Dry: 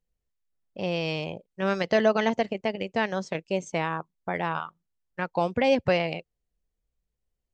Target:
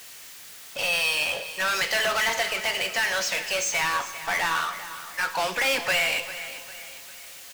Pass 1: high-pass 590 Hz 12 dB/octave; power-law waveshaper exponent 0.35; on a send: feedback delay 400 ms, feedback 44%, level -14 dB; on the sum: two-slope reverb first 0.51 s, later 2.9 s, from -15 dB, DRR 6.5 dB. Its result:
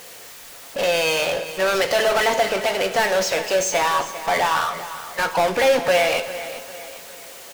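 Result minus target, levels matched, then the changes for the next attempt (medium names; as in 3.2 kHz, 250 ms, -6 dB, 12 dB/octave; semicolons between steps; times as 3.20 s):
500 Hz band +8.5 dB
change: high-pass 1.6 kHz 12 dB/octave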